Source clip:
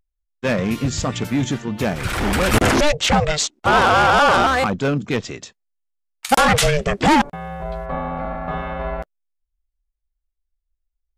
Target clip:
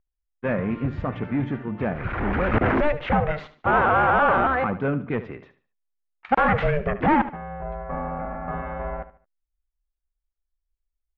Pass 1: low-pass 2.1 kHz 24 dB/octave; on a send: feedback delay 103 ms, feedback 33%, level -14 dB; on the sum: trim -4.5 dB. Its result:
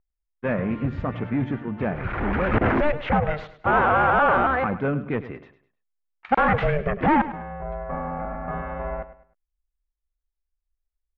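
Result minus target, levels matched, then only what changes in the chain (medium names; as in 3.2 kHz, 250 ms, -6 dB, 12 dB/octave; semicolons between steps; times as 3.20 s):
echo 30 ms late
change: feedback delay 73 ms, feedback 33%, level -14 dB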